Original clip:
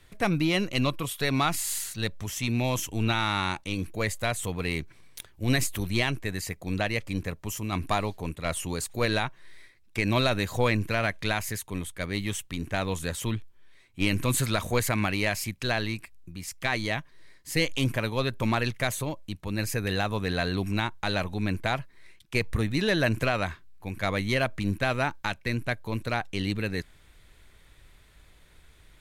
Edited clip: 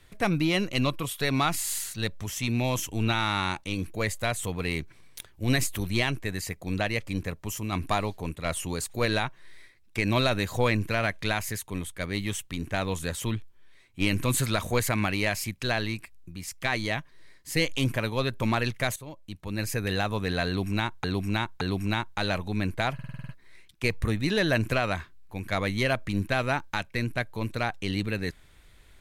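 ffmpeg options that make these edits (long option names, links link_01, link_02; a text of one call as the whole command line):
ffmpeg -i in.wav -filter_complex "[0:a]asplit=11[link_01][link_02][link_03][link_04][link_05][link_06][link_07][link_08][link_09][link_10][link_11];[link_01]atrim=end=18.96,asetpts=PTS-STARTPTS,afade=type=out:start_time=18.956:duration=0.004:curve=hsin:silence=0.158489[link_12];[link_02]atrim=start=18.96:end=21.042,asetpts=PTS-STARTPTS,afade=type=in:duration=0.98:curve=qsin:silence=0.158489[link_13];[link_03]atrim=start=20.468:end=21.042[link_14];[link_04]atrim=start=20.468:end=21.852[link_15];[link_05]atrim=start=21.798:end=21.852[link_16];[link_06]atrim=start=21.798:end=21.852[link_17];[link_07]atrim=start=21.798:end=21.852[link_18];[link_08]atrim=start=21.798:end=21.852[link_19];[link_09]atrim=start=21.798:end=21.852[link_20];[link_10]atrim=start=21.798:end=21.852[link_21];[link_11]atrim=start=21.798[link_22];[link_12][link_13]concat=n=2:v=0:a=1[link_23];[link_23][link_14]acrossfade=duration=0.004:curve1=hsin:curve2=hsin[link_24];[link_24][link_15]acrossfade=duration=0.004:curve1=hsin:curve2=hsin[link_25];[link_25][link_16]acrossfade=duration=0.004:curve1=hsin:curve2=hsin[link_26];[link_26][link_17]acrossfade=duration=0.004:curve1=hsin:curve2=hsin[link_27];[link_27][link_18]acrossfade=duration=0.004:curve1=hsin:curve2=hsin[link_28];[link_28][link_19]acrossfade=duration=0.004:curve1=hsin:curve2=hsin[link_29];[link_29][link_20]acrossfade=duration=0.004:curve1=hsin:curve2=hsin[link_30];[link_30][link_21]acrossfade=duration=0.004:curve1=hsin:curve2=hsin[link_31];[link_31][link_22]acrossfade=duration=0.004:curve1=hsin:curve2=hsin" out.wav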